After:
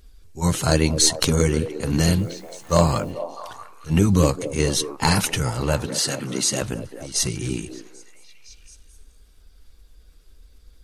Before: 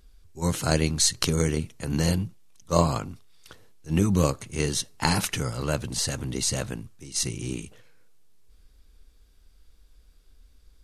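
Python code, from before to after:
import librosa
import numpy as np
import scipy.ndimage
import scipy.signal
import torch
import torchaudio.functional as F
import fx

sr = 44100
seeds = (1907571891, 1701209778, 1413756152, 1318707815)

p1 = fx.spec_quant(x, sr, step_db=15)
p2 = fx.highpass(p1, sr, hz=150.0, slope=24, at=(5.86, 6.62))
p3 = 10.0 ** (-15.0 / 20.0) * np.tanh(p2 / 10.0 ** (-15.0 / 20.0))
p4 = p2 + (p3 * librosa.db_to_amplitude(-11.0))
p5 = fx.quant_dither(p4, sr, seeds[0], bits=10, dither='triangular', at=(2.17, 3.1), fade=0.02)
p6 = np.clip(p5, -10.0 ** (-8.5 / 20.0), 10.0 ** (-8.5 / 20.0))
p7 = p6 + fx.echo_stepped(p6, sr, ms=217, hz=400.0, octaves=0.7, feedback_pct=70, wet_db=-7.0, dry=0)
y = p7 * librosa.db_to_amplitude(3.5)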